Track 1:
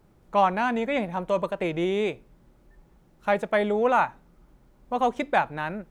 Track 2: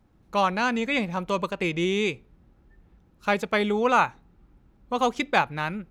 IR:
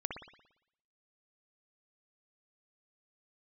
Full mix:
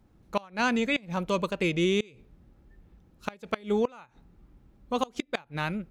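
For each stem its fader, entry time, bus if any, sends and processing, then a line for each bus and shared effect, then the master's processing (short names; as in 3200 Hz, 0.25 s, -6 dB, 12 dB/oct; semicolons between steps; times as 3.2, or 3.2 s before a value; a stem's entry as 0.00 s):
-13.5 dB, 0.00 s, no send, soft clip -17 dBFS, distortion -15 dB; tone controls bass -14 dB, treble -4 dB
+1.0 dB, 0.00 s, polarity flipped, no send, bell 1200 Hz -3.5 dB 2.6 oct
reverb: off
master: flipped gate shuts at -14 dBFS, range -26 dB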